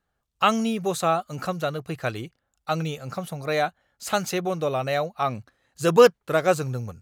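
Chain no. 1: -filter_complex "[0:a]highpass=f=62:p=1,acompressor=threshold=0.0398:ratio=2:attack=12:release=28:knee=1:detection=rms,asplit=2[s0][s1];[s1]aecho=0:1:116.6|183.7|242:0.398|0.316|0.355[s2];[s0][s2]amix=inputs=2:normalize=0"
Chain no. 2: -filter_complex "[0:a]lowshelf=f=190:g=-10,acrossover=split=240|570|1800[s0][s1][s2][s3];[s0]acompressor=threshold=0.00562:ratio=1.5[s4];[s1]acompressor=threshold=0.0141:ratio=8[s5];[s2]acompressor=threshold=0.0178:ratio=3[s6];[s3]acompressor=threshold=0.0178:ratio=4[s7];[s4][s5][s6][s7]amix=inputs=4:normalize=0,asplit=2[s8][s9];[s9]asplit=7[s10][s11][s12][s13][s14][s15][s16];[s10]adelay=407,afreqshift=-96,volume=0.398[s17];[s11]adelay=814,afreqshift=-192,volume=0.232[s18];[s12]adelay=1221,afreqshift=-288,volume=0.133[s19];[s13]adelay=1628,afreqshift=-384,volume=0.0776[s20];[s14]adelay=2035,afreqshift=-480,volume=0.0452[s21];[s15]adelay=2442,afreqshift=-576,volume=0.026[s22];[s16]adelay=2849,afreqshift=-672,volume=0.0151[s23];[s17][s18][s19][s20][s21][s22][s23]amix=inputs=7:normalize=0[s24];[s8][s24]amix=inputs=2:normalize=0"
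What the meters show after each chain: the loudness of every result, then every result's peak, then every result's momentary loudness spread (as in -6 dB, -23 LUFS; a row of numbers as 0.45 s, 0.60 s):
-28.0 LUFS, -33.0 LUFS; -11.0 dBFS, -12.5 dBFS; 8 LU, 5 LU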